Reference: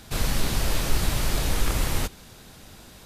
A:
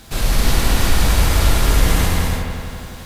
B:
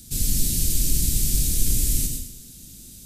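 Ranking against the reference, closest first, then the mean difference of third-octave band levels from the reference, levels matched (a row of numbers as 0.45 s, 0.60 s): A, B; 4.5 dB, 10.5 dB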